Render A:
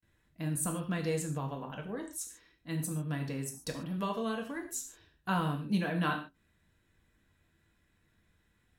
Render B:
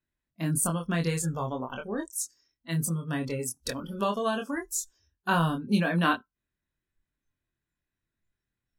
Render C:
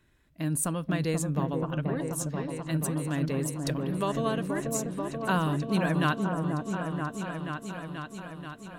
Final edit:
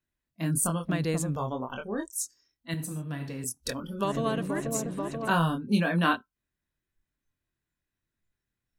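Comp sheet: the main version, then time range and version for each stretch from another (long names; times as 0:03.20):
B
0:00.85–0:01.36: punch in from C
0:02.74–0:03.44: punch in from A
0:04.04–0:05.31: punch in from C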